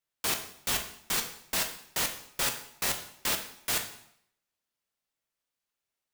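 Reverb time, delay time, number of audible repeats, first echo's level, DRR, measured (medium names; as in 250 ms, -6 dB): 0.70 s, no echo, no echo, no echo, 4.0 dB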